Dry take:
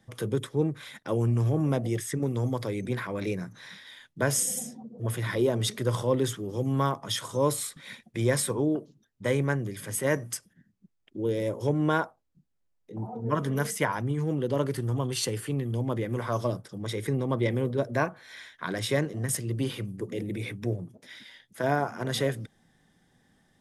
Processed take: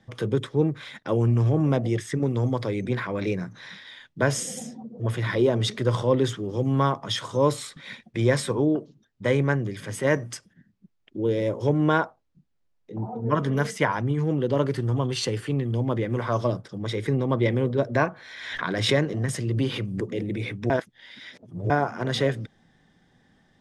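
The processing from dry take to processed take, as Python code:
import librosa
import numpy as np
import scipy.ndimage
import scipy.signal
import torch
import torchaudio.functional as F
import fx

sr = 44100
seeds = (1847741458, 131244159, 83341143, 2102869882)

y = fx.pre_swell(x, sr, db_per_s=49.0, at=(17.95, 20.12))
y = fx.edit(y, sr, fx.reverse_span(start_s=20.7, length_s=1.0), tone=tone)
y = scipy.signal.sosfilt(scipy.signal.butter(2, 5300.0, 'lowpass', fs=sr, output='sos'), y)
y = y * librosa.db_to_amplitude(4.0)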